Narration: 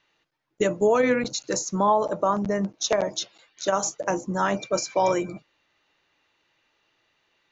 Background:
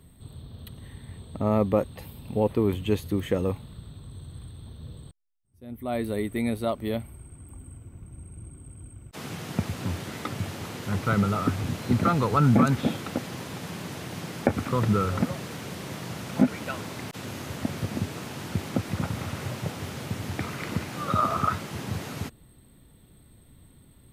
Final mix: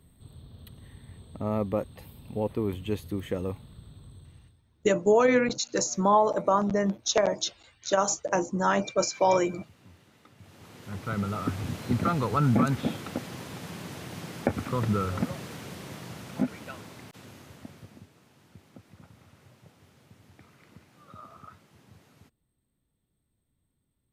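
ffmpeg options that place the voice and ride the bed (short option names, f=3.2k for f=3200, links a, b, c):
-filter_complex "[0:a]adelay=4250,volume=-0.5dB[a];[1:a]volume=15dB,afade=t=out:st=4.05:d=0.57:silence=0.11885,afade=t=in:st=10.37:d=1.28:silence=0.0944061,afade=t=out:st=15.44:d=2.66:silence=0.1[b];[a][b]amix=inputs=2:normalize=0"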